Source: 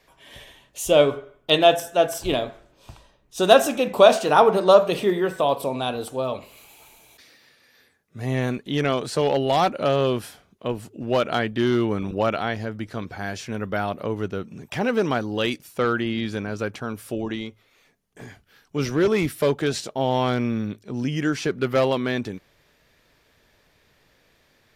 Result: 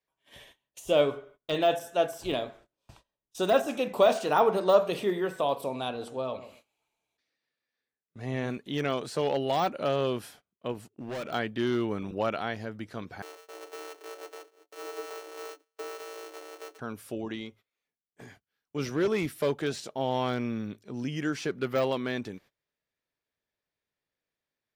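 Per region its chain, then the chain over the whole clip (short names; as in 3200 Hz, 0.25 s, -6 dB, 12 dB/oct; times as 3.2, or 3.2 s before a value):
5.88–8.5 air absorption 53 m + darkening echo 0.135 s, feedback 24%, low-pass 1000 Hz, level -12 dB
10.74–11.33 gate -41 dBFS, range -16 dB + overloaded stage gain 26 dB
13.22–16.79 sample sorter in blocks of 256 samples + frequency shift +280 Hz + metallic resonator 65 Hz, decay 0.28 s, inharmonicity 0.03
whole clip: de-esser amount 65%; gate -46 dBFS, range -22 dB; low shelf 81 Hz -9 dB; gain -6.5 dB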